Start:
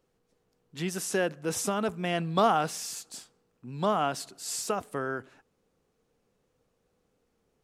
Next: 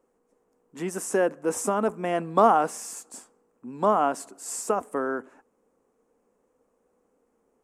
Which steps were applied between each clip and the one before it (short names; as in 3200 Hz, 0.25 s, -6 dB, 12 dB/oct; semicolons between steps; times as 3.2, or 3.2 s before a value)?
graphic EQ 125/250/500/1000/2000/4000/8000 Hz -10/+11/+7/+10/+3/-11/+9 dB; gain -4.5 dB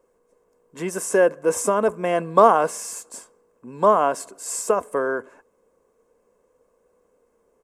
comb 1.9 ms, depth 49%; gain +4 dB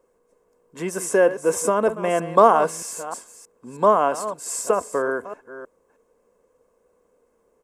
reverse delay 0.314 s, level -13 dB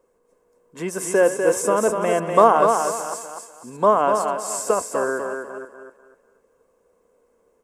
thinning echo 0.247 s, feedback 30%, high-pass 170 Hz, level -5 dB